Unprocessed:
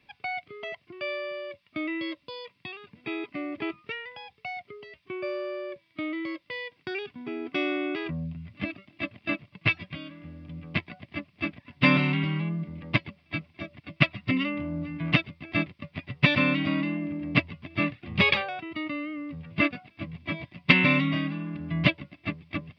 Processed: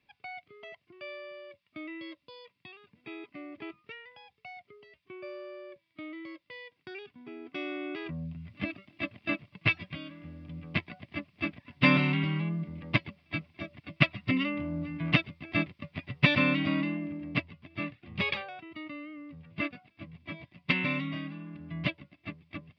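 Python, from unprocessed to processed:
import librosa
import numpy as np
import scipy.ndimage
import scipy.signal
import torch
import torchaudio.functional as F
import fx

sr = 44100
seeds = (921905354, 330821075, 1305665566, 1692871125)

y = fx.gain(x, sr, db=fx.line((7.46, -10.0), (8.55, -2.0), (16.82, -2.0), (17.54, -9.0)))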